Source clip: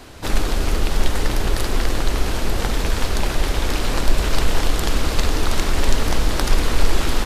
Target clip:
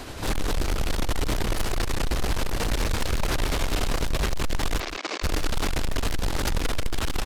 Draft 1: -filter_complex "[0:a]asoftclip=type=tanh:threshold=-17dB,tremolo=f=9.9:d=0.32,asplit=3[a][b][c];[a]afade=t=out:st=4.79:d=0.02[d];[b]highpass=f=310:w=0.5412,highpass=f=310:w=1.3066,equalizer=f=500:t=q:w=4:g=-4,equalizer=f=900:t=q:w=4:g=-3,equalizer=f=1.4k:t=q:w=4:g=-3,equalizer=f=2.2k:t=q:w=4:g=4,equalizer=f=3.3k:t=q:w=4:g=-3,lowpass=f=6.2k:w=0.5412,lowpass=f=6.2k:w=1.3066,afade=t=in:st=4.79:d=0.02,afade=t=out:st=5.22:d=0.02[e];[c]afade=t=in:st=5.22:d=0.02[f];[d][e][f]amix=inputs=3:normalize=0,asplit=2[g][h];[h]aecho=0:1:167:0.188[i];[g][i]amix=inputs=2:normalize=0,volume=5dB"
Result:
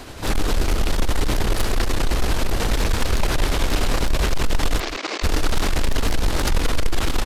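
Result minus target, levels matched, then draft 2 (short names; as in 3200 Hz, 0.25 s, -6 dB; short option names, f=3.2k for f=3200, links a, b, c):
soft clip: distortion -4 dB
-filter_complex "[0:a]asoftclip=type=tanh:threshold=-25dB,tremolo=f=9.9:d=0.32,asplit=3[a][b][c];[a]afade=t=out:st=4.79:d=0.02[d];[b]highpass=f=310:w=0.5412,highpass=f=310:w=1.3066,equalizer=f=500:t=q:w=4:g=-4,equalizer=f=900:t=q:w=4:g=-3,equalizer=f=1.4k:t=q:w=4:g=-3,equalizer=f=2.2k:t=q:w=4:g=4,equalizer=f=3.3k:t=q:w=4:g=-3,lowpass=f=6.2k:w=0.5412,lowpass=f=6.2k:w=1.3066,afade=t=in:st=4.79:d=0.02,afade=t=out:st=5.22:d=0.02[e];[c]afade=t=in:st=5.22:d=0.02[f];[d][e][f]amix=inputs=3:normalize=0,asplit=2[g][h];[h]aecho=0:1:167:0.188[i];[g][i]amix=inputs=2:normalize=0,volume=5dB"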